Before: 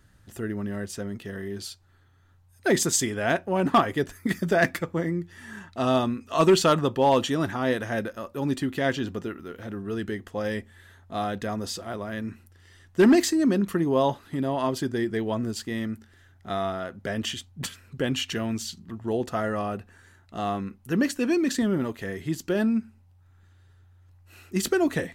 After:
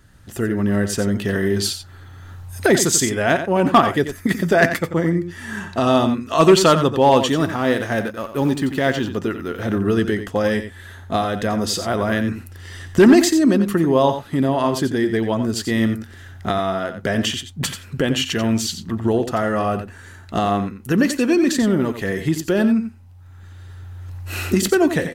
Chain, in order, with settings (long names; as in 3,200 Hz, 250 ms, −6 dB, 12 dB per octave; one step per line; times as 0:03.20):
0:07.28–0:09.10: mu-law and A-law mismatch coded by A
camcorder AGC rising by 9.8 dB per second
single-tap delay 89 ms −10 dB
level +6.5 dB